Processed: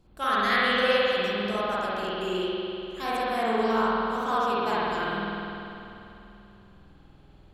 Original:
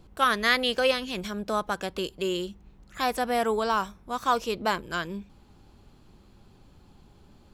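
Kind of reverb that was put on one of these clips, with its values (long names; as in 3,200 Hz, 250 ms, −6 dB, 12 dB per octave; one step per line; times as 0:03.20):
spring reverb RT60 3 s, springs 49 ms, chirp 20 ms, DRR −9.5 dB
level −8.5 dB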